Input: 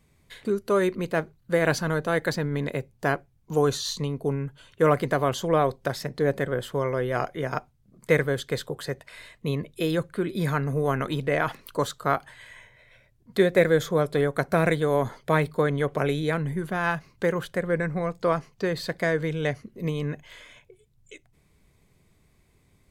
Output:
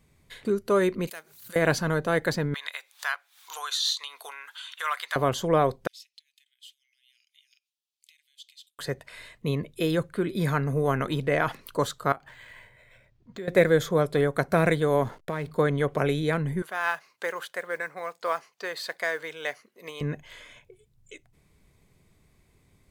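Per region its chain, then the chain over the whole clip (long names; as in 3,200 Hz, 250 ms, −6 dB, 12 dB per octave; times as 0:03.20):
0:01.07–0:01.56: first difference + background raised ahead of every attack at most 76 dB per second
0:02.54–0:05.16: high-pass filter 1,100 Hz 24 dB per octave + parametric band 3,600 Hz +9 dB 0.44 octaves + upward compression, threshold −30 dBFS
0:05.87–0:08.79: downward compressor, threshold −36 dBFS + Butterworth high-pass 2,700 Hz 48 dB per octave + high-shelf EQ 6,100 Hz −11 dB
0:12.12–0:13.48: downward compressor 2.5 to 1, threshold −42 dBFS + linearly interpolated sample-rate reduction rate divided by 4×
0:15.03–0:15.51: downward compressor 4 to 1, threshold −27 dBFS + slack as between gear wheels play −44.5 dBFS
0:16.62–0:20.01: high-pass filter 760 Hz + noise that follows the level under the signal 29 dB
whole clip: no processing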